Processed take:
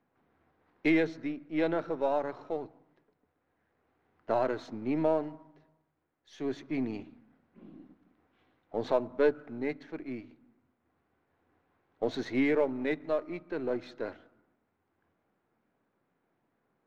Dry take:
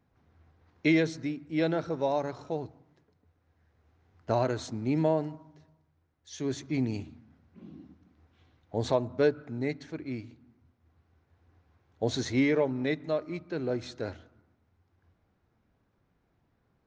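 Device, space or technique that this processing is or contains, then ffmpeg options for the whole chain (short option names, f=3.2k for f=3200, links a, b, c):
crystal radio: -af "highpass=230,lowpass=2.7k,aeval=exprs='if(lt(val(0),0),0.708*val(0),val(0))':c=same,volume=1dB"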